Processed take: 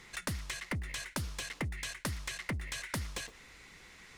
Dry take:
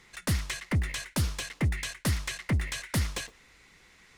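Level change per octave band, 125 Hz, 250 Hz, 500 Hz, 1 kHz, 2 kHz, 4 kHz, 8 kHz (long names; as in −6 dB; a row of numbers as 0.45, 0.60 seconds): −11.0, −8.5, −5.5, −3.5, −4.0, −5.0, −5.0 decibels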